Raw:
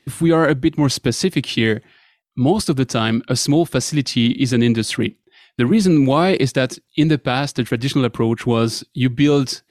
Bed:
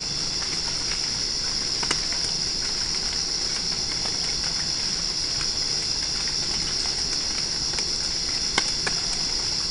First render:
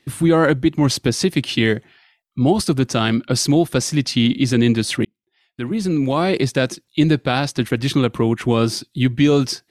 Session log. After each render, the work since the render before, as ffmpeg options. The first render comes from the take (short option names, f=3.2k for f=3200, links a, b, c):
-filter_complex "[0:a]asplit=2[a][b];[a]atrim=end=5.05,asetpts=PTS-STARTPTS,afade=t=out:st=5.046:d=0.004:c=hsin[c];[b]atrim=start=5.05,asetpts=PTS-STARTPTS,afade=t=in:d=1.67[d];[c][d]concat=n=2:v=0:a=1"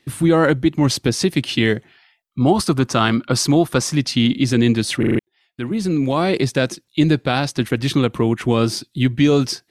-filter_complex "[0:a]asettb=1/sr,asplit=3[a][b][c];[a]atrim=end=2.404[d];[b]atrim=start=2.4:end=3.96,asetpts=PTS-STARTPTS,afade=t=in:d=0.004:c=qsin,afade=t=out:st=1.556:d=0.004:c=qsin,equalizer=f=1.1k:t=o:w=0.78:g=8[e];[c]atrim=start=3.956[f];[d][e]acrossfade=d=0.004:c1=hsin:c2=qsin[g];[g][f]acrossfade=d=0.004:c1=qsin:c2=hsin,asplit=6[h][i][j][k][l][m];[h]atrim=end=5.032[n];[i]atrim=start=4.988:end=5.032[o];[j]atrim=start=4.988:end=5.032[p];[k]atrim=start=4.988:end=5.032[q];[l]atrim=start=4.988:end=5.032[r];[m]atrim=start=5.188[s];[n][o]acrossfade=d=0.004:c1=hsin:c2=hsin[t];[t][p]acrossfade=d=0.004:c1=hsin:c2=hsin[u];[u][q]acrossfade=d=0.004:c1=hsin:c2=hsin[v];[v][r]acrossfade=d=0.004:c1=hsin:c2=hsin[w];[w][s]acrossfade=d=0.004:c1=hsin:c2=hsin"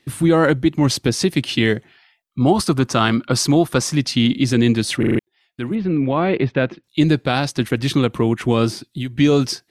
-filter_complex "[0:a]asettb=1/sr,asplit=3[a][b][c];[a]atrim=end=5.754[d];[b]atrim=start=5.75:end=6.84,asetpts=PTS-STARTPTS,afade=t=in:d=0.004:c=qsin,afade=t=out:st=1.086:d=0.004:c=qsin,lowpass=f=2.9k:w=0.5412,lowpass=f=2.9k:w=1.3066[e];[c]atrim=start=6.836[f];[d][e]acrossfade=d=0.004:c1=hsin:c2=qsin[g];[g][f]acrossfade=d=0.004:c1=qsin:c2=hsin,asettb=1/sr,asplit=3[h][i][j];[h]atrim=end=8.704[k];[i]atrim=start=8.7:end=9.16,asetpts=PTS-STARTPTS,afade=t=in:d=0.004:c=qsin,afade=t=out:st=0.456:d=0.004:c=qsin,acrossover=split=3200|7700[l][m][n];[l]acompressor=threshold=-24dB:ratio=4[o];[m]acompressor=threshold=-38dB:ratio=4[p];[n]acompressor=threshold=-41dB:ratio=4[q];[o][p][q]amix=inputs=3:normalize=0[r];[j]atrim=start=9.156[s];[k][r]acrossfade=d=0.004:c1=hsin:c2=qsin[t];[t][s]acrossfade=d=0.004:c1=qsin:c2=hsin"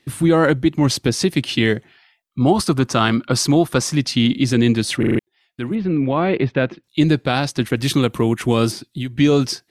-filter_complex "[0:a]asettb=1/sr,asplit=3[a][b][c];[a]atrim=end=7.784[d];[b]atrim=start=7.78:end=8.72,asetpts=PTS-STARTPTS,afade=t=in:d=0.004:c=qsin,afade=t=out:st=0.936:d=0.004:c=qsin,highshelf=f=7.5k:g=11.5[e];[c]atrim=start=8.716[f];[d][e]acrossfade=d=0.004:c1=hsin:c2=qsin[g];[g][f]acrossfade=d=0.004:c1=qsin:c2=hsin"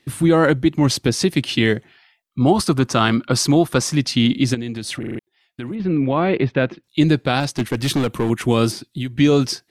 -filter_complex "[0:a]asettb=1/sr,asplit=3[a][b][c];[a]atrim=end=4.544[d];[b]atrim=start=4.54:end=5.8,asetpts=PTS-STARTPTS,afade=t=in:d=0.004:c=qsin,afade=t=out:st=1.256:d=0.004:c=qsin,acompressor=threshold=-24dB:ratio=5:attack=3.2:release=140:knee=1:detection=peak[e];[c]atrim=start=5.796[f];[d][e]acrossfade=d=0.004:c1=hsin:c2=qsin[g];[g][f]acrossfade=d=0.004:c1=qsin:c2=hsin,asettb=1/sr,asplit=3[h][i][j];[h]atrim=end=7.404[k];[i]atrim=start=7.4:end=8.3,asetpts=PTS-STARTPTS,afade=t=in:d=0.004:c=qsin,afade=t=out:st=0.896:d=0.004:c=qsin,asoftclip=type=hard:threshold=-14dB[l];[j]atrim=start=8.296[m];[k][l]acrossfade=d=0.004:c1=hsin:c2=qsin[n];[n][m]acrossfade=d=0.004:c1=qsin:c2=hsin"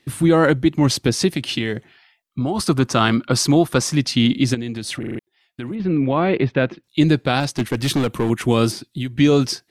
-filter_complex "[0:a]asettb=1/sr,asplit=3[a][b][c];[a]atrim=end=1.294[d];[b]atrim=start=1.29:end=2.69,asetpts=PTS-STARTPTS,afade=t=in:d=0.004:c=qsin,afade=t=out:st=1.396:d=0.004:c=qsin,acompressor=threshold=-17dB:ratio=6:attack=3.2:release=140:knee=1:detection=peak[e];[c]atrim=start=2.686[f];[d][e]acrossfade=d=0.004:c1=hsin:c2=qsin[g];[g][f]acrossfade=d=0.004:c1=qsin:c2=hsin"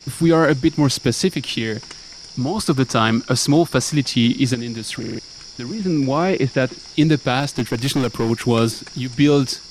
-filter_complex "[1:a]volume=-13dB[a];[0:a][a]amix=inputs=2:normalize=0"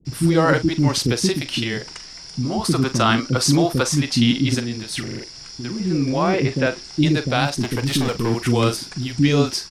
-filter_complex "[0:a]asplit=2[a][b];[b]adelay=42,volume=-12dB[c];[a][c]amix=inputs=2:normalize=0,acrossover=split=370[d][e];[e]adelay=50[f];[d][f]amix=inputs=2:normalize=0"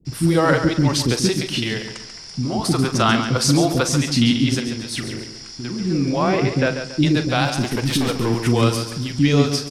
-af "aecho=1:1:139|278|417|556:0.355|0.128|0.046|0.0166"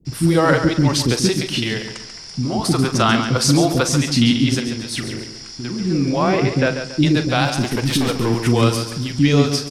-af "volume=1.5dB,alimiter=limit=-2dB:level=0:latency=1"